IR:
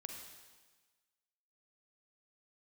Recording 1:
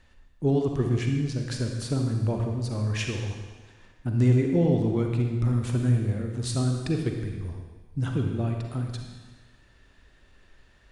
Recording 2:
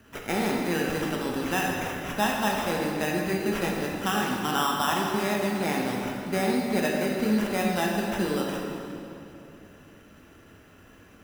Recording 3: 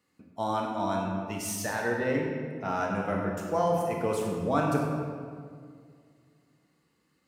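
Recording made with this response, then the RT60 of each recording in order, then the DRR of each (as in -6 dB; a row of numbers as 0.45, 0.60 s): 1; 1.3, 2.9, 2.1 s; 2.5, -2.0, -0.5 dB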